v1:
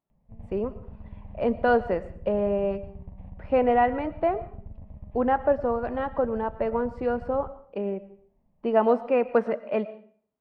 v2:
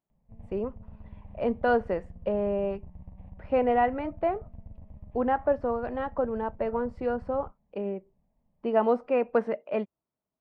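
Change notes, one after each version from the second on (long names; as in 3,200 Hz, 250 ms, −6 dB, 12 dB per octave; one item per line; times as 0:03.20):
reverb: off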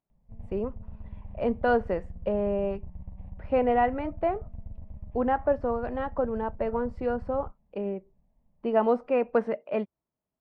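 master: add low-shelf EQ 89 Hz +7 dB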